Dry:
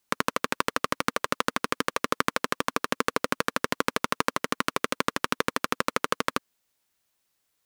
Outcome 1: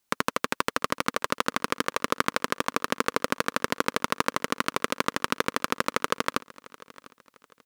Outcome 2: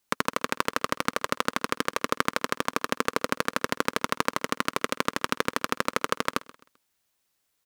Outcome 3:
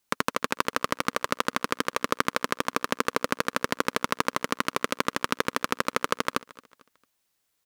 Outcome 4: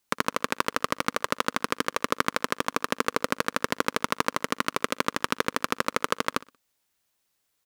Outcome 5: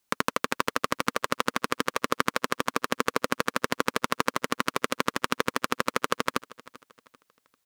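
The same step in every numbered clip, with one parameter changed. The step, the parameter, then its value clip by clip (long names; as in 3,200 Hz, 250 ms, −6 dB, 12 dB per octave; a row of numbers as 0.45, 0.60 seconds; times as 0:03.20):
repeating echo, delay time: 699, 130, 224, 61, 392 milliseconds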